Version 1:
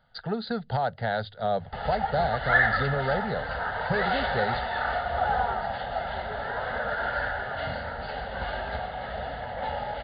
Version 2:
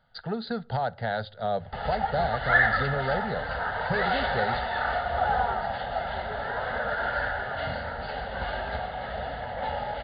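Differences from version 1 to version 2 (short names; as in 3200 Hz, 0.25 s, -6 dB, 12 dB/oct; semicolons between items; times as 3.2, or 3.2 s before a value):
speech -4.0 dB; reverb: on, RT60 0.45 s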